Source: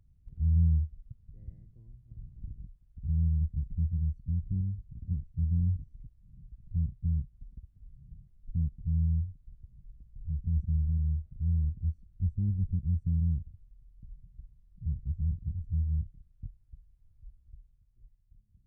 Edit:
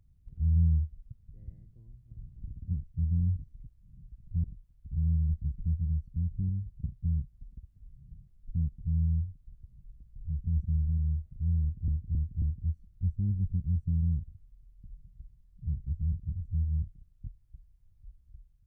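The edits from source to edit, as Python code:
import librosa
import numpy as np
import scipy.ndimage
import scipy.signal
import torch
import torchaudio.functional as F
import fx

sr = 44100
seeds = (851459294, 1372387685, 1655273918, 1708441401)

y = fx.edit(x, sr, fx.move(start_s=4.96, length_s=1.88, to_s=2.56),
    fx.repeat(start_s=11.61, length_s=0.27, count=4), tone=tone)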